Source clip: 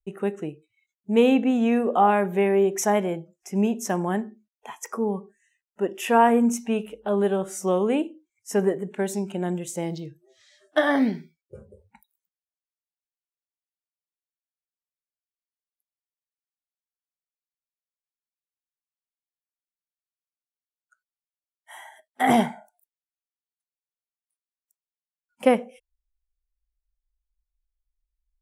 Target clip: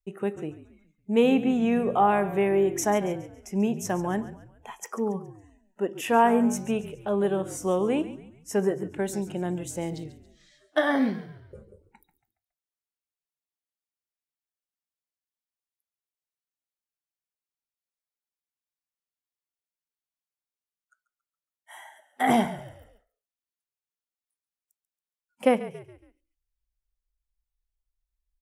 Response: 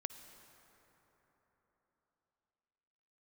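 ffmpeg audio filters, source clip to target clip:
-filter_complex "[0:a]asplit=5[link_01][link_02][link_03][link_04][link_05];[link_02]adelay=139,afreqshift=-48,volume=-15dB[link_06];[link_03]adelay=278,afreqshift=-96,volume=-22.7dB[link_07];[link_04]adelay=417,afreqshift=-144,volume=-30.5dB[link_08];[link_05]adelay=556,afreqshift=-192,volume=-38.2dB[link_09];[link_01][link_06][link_07][link_08][link_09]amix=inputs=5:normalize=0,volume=-2.5dB"

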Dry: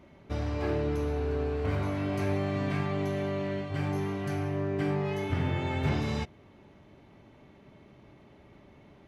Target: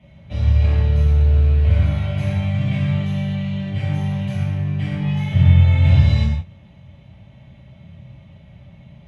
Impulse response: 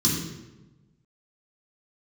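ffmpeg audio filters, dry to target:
-filter_complex "[1:a]atrim=start_sample=2205,afade=type=out:start_time=0.15:duration=0.01,atrim=end_sample=7056,asetrate=23814,aresample=44100[link_01];[0:a][link_01]afir=irnorm=-1:irlink=0,volume=-13dB"

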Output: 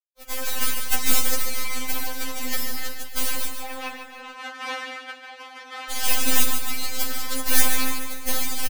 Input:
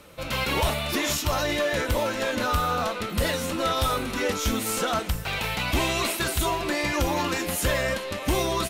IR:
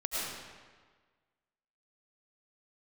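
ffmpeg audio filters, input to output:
-filter_complex "[0:a]aemphasis=mode=production:type=bsi,aeval=exprs='sgn(val(0))*max(abs(val(0))-0.0224,0)':channel_layout=same,aeval=exprs='0.531*(cos(1*acos(clip(val(0)/0.531,-1,1)))-cos(1*PI/2))+0.168*(cos(6*acos(clip(val(0)/0.531,-1,1)))-cos(6*PI/2))+0.106*(cos(7*acos(clip(val(0)/0.531,-1,1)))-cos(7*PI/2))':channel_layout=same,asettb=1/sr,asplit=3[link_01][link_02][link_03];[link_01]atrim=end=3.484[link_04];[link_02]atrim=start=3.48:end=5.91,asetpts=PTS-STARTPTS,afade=type=in:duration=0.004:curve=qsin,afade=type=out:start_time=2.426:duration=0.004:curve=qsin,highpass=480,lowpass=2200[link_05];[link_03]atrim=start=5.906[link_06];[link_04][link_05]acrossfade=duration=0.004:curve1=hsin:curve2=qsin[link_07];[link_07][link_06]acrossfade=duration=0.004:curve1=qsin:curve2=hsin,aecho=1:1:145|290|435|580|725|870:0.422|0.219|0.114|0.0593|0.0308|0.016,afftfilt=real='re*3.46*eq(mod(b,12),0)':imag='im*3.46*eq(mod(b,12),0)':win_size=2048:overlap=0.75"

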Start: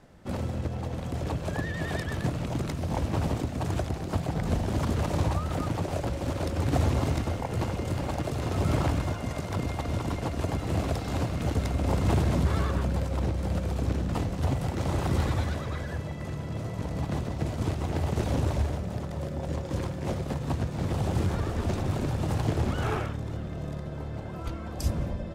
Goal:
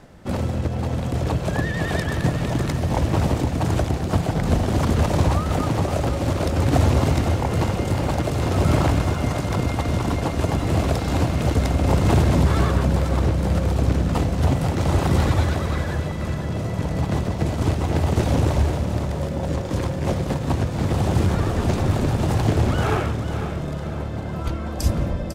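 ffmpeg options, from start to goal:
ffmpeg -i in.wav -af "areverse,acompressor=mode=upward:threshold=-42dB:ratio=2.5,areverse,aecho=1:1:500|1000|1500|2000|2500:0.335|0.147|0.0648|0.0285|0.0126,volume=7.5dB" out.wav

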